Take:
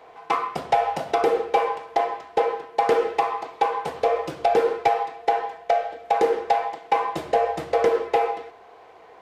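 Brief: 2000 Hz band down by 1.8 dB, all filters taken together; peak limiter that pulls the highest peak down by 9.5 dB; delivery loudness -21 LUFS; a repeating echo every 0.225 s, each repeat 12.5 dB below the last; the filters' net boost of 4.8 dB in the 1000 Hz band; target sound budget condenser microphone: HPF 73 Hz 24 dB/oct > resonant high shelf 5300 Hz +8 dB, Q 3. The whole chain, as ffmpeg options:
-af "equalizer=f=1k:t=o:g=7.5,equalizer=f=2k:t=o:g=-3.5,alimiter=limit=-13dB:level=0:latency=1,highpass=f=73:w=0.5412,highpass=f=73:w=1.3066,highshelf=f=5.3k:t=q:w=3:g=8,aecho=1:1:225|450|675:0.237|0.0569|0.0137,volume=2.5dB"

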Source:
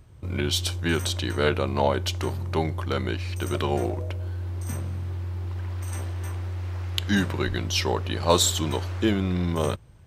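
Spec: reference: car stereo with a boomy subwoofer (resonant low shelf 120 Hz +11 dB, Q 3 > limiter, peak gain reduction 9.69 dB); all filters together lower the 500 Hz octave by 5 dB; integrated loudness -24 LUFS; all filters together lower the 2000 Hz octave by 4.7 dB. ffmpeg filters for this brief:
-af "lowshelf=f=120:t=q:w=3:g=11,equalizer=f=500:t=o:g=-5,equalizer=f=2k:t=o:g=-6,volume=-3.5dB,alimiter=limit=-18.5dB:level=0:latency=1"

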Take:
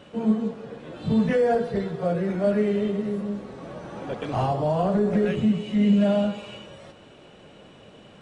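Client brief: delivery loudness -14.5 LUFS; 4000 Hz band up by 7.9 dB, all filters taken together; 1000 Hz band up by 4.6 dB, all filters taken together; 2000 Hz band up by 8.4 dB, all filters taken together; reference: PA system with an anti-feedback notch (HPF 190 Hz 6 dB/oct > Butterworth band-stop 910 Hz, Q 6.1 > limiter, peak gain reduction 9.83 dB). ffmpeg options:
-af "highpass=f=190:p=1,asuperstop=centerf=910:order=8:qfactor=6.1,equalizer=f=1k:t=o:g=7,equalizer=f=2k:t=o:g=6.5,equalizer=f=4k:t=o:g=7.5,volume=14.5dB,alimiter=limit=-5dB:level=0:latency=1"

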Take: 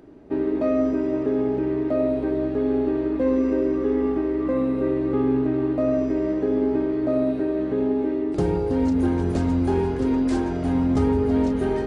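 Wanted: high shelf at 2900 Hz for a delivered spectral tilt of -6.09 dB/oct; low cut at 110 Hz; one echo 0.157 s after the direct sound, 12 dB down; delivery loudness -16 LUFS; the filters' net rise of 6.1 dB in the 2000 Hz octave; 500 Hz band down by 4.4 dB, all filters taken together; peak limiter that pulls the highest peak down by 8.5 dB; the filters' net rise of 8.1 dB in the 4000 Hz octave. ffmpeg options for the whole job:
-af "highpass=110,equalizer=f=500:t=o:g=-6.5,equalizer=f=2k:t=o:g=5.5,highshelf=f=2.9k:g=4,equalizer=f=4k:t=o:g=5.5,alimiter=limit=-21dB:level=0:latency=1,aecho=1:1:157:0.251,volume=12dB"

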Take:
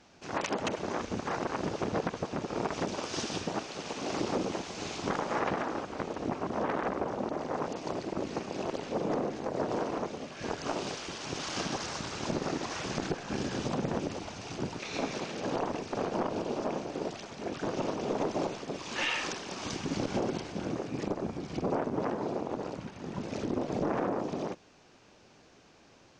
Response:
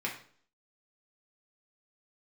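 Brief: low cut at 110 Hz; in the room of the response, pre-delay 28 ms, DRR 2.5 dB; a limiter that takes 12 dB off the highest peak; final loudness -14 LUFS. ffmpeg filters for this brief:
-filter_complex "[0:a]highpass=110,alimiter=level_in=4dB:limit=-24dB:level=0:latency=1,volume=-4dB,asplit=2[a][b];[1:a]atrim=start_sample=2205,adelay=28[c];[b][c]afir=irnorm=-1:irlink=0,volume=-7.5dB[d];[a][d]amix=inputs=2:normalize=0,volume=22.5dB"

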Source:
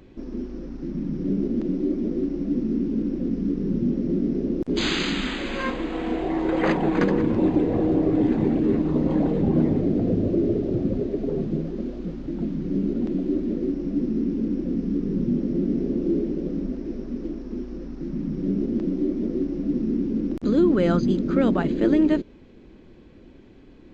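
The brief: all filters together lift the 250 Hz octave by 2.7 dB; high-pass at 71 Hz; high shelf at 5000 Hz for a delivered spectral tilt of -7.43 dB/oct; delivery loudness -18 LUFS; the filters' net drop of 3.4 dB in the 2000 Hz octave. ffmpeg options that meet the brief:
-af "highpass=71,equalizer=f=250:t=o:g=3.5,equalizer=f=2k:t=o:g=-5,highshelf=f=5k:g=3.5,volume=4dB"

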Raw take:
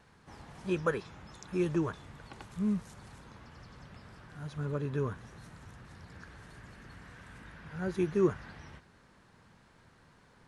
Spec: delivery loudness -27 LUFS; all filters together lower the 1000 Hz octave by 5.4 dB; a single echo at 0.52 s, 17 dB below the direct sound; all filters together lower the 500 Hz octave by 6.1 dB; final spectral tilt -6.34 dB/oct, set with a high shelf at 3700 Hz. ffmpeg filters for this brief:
-af "equalizer=f=500:t=o:g=-8.5,equalizer=f=1k:t=o:g=-6.5,highshelf=f=3.7k:g=8.5,aecho=1:1:520:0.141,volume=11.5dB"

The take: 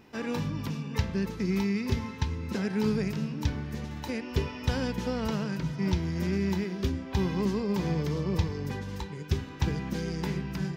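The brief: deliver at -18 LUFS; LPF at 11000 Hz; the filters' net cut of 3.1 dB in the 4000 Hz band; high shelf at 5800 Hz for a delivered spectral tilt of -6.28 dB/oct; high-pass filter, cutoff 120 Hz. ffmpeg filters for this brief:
-af "highpass=120,lowpass=11k,equalizer=f=4k:t=o:g=-7.5,highshelf=f=5.8k:g=8,volume=14.5dB"

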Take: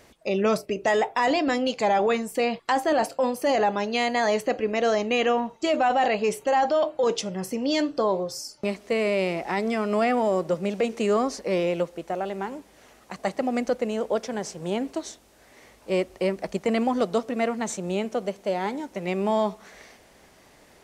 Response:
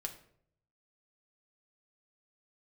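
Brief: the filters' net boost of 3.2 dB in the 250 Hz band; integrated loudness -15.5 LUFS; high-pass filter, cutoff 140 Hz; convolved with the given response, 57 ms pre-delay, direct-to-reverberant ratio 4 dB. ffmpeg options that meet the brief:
-filter_complex "[0:a]highpass=140,equalizer=f=250:t=o:g=4.5,asplit=2[a][b];[1:a]atrim=start_sample=2205,adelay=57[c];[b][c]afir=irnorm=-1:irlink=0,volume=-2.5dB[d];[a][d]amix=inputs=2:normalize=0,volume=7.5dB"

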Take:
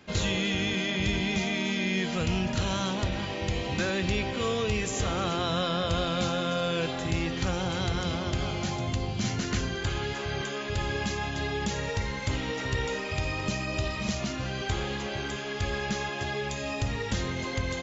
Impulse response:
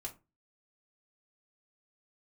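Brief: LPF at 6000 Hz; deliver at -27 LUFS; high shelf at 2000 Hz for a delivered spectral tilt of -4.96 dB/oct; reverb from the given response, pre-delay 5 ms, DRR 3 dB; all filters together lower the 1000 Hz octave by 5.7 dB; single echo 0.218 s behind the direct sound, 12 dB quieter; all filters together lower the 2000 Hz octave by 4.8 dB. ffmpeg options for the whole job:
-filter_complex "[0:a]lowpass=6k,equalizer=f=1k:t=o:g=-7,highshelf=f=2k:g=3.5,equalizer=f=2k:t=o:g=-6.5,aecho=1:1:218:0.251,asplit=2[a][b];[1:a]atrim=start_sample=2205,adelay=5[c];[b][c]afir=irnorm=-1:irlink=0,volume=-0.5dB[d];[a][d]amix=inputs=2:normalize=0,volume=1.5dB"

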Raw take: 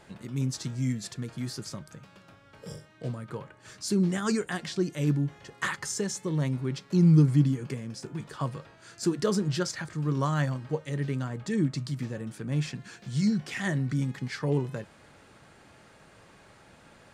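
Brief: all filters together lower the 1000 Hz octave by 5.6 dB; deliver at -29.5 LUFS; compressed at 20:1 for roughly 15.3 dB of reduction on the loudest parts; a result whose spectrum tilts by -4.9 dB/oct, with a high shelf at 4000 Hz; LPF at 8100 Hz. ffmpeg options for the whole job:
-af "lowpass=8.1k,equalizer=f=1k:t=o:g=-7.5,highshelf=f=4k:g=3.5,acompressor=threshold=-31dB:ratio=20,volume=7.5dB"

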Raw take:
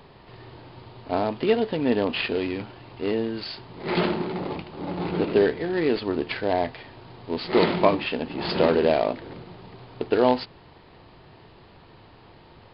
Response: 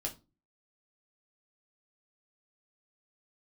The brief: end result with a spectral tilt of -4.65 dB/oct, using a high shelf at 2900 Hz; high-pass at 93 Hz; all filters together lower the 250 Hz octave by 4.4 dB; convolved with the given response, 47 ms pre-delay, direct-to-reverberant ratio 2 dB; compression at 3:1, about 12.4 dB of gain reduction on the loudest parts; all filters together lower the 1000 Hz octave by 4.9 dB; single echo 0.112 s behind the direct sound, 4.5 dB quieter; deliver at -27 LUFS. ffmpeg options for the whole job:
-filter_complex "[0:a]highpass=93,equalizer=f=250:t=o:g=-5.5,equalizer=f=1k:t=o:g=-5.5,highshelf=f=2.9k:g=-7.5,acompressor=threshold=-35dB:ratio=3,aecho=1:1:112:0.596,asplit=2[a][b];[1:a]atrim=start_sample=2205,adelay=47[c];[b][c]afir=irnorm=-1:irlink=0,volume=-3dB[d];[a][d]amix=inputs=2:normalize=0,volume=7dB"

